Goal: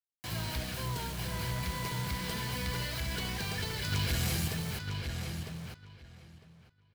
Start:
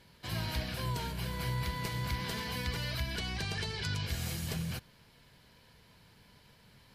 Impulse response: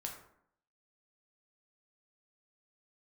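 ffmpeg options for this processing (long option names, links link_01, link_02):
-filter_complex "[0:a]asettb=1/sr,asplit=3[link_01][link_02][link_03];[link_01]atrim=end=3.924[link_04];[link_02]atrim=start=3.92:end=4.48,asetpts=PTS-STARTPTS,afade=type=in:duration=0.004:curve=qsin,afade=type=out:start_time=0.556:duration=0.004:curve=qsin,acontrast=90[link_05];[link_03]atrim=start=4.476[link_06];[link_04][link_05]acrossfade=duration=0.004:curve1=hsin:curve2=qsin[link_07];[link_07][link_06]acrossfade=duration=0.004:curve1=qsin:curve2=hsin,asoftclip=type=tanh:threshold=-25.5dB,acrusher=bits=6:mix=0:aa=0.000001,asplit=2[link_08][link_09];[link_09]adelay=953,lowpass=frequency=4100:poles=1,volume=-5dB,asplit=2[link_10][link_11];[link_11]adelay=953,lowpass=frequency=4100:poles=1,volume=0.17,asplit=2[link_12][link_13];[link_13]adelay=953,lowpass=frequency=4100:poles=1,volume=0.17[link_14];[link_08][link_10][link_12][link_14]amix=inputs=4:normalize=0"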